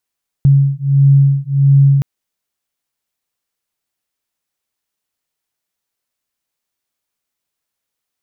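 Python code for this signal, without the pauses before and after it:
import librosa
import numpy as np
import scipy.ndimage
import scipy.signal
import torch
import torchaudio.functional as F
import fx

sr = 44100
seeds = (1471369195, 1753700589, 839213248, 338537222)

y = fx.two_tone_beats(sr, length_s=1.57, hz=138.0, beat_hz=1.5, level_db=-10.5)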